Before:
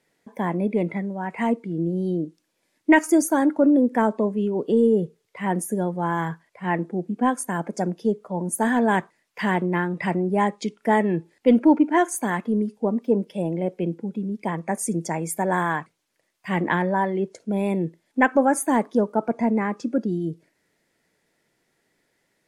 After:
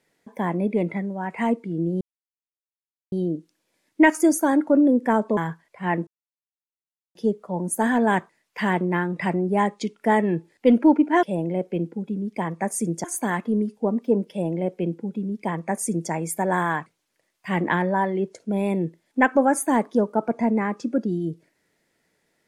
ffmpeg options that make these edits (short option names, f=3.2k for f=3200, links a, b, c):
-filter_complex "[0:a]asplit=7[a][b][c][d][e][f][g];[a]atrim=end=2.01,asetpts=PTS-STARTPTS,afade=t=out:st=2.006:d=0.004:c=hsin,apad=pad_dur=1.11[h];[b]atrim=start=2.01:end=4.262,asetpts=PTS-STARTPTS,afade=t=in:d=0.004:c=hsin[i];[c]atrim=start=6.178:end=6.88,asetpts=PTS-STARTPTS,afade=t=out:st=0.698:d=0.004:c=hsin[j];[d]atrim=start=6.88:end=7.96,asetpts=PTS-STARTPTS,volume=0[k];[e]atrim=start=7.96:end=12.042,asetpts=PTS-STARTPTS,afade=t=in:d=0.004:c=hsin[l];[f]atrim=start=13.298:end=15.112[m];[g]atrim=start=12.038[n];[h][i]concat=n=2:v=0:a=1[o];[j][k][l]concat=n=3:v=0:a=1[p];[o][p]acrossfade=d=0.004:c1=hsin:c2=hsin[q];[q][m]acrossfade=d=0.004:c1=hsin:c2=hsin[r];[r][n]acrossfade=d=0.004:c1=hsin:c2=hsin"